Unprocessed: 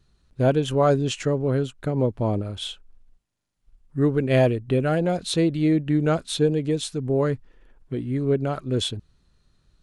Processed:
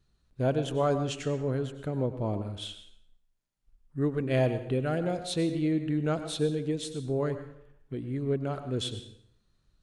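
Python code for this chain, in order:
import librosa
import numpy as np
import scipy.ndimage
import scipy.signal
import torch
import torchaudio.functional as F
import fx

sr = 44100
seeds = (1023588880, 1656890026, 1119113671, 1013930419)

y = fx.rev_plate(x, sr, seeds[0], rt60_s=0.68, hf_ratio=0.8, predelay_ms=85, drr_db=9.5)
y = F.gain(torch.from_numpy(y), -7.5).numpy()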